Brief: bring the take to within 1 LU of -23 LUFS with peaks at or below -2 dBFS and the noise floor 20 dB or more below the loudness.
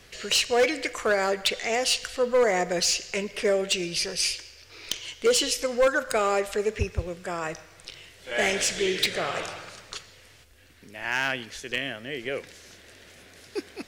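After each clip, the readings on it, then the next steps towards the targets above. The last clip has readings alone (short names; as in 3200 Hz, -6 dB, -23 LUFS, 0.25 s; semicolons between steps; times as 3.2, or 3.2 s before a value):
clipped 0.6%; flat tops at -16.0 dBFS; loudness -26.0 LUFS; peak -16.0 dBFS; loudness target -23.0 LUFS
-> clip repair -16 dBFS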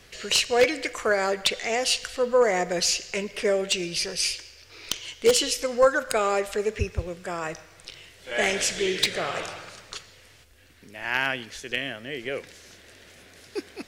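clipped 0.0%; loudness -25.0 LUFS; peak -7.0 dBFS; loudness target -23.0 LUFS
-> gain +2 dB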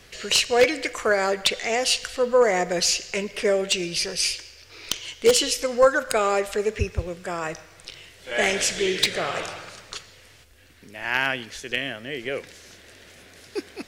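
loudness -23.0 LUFS; peak -5.0 dBFS; noise floor -51 dBFS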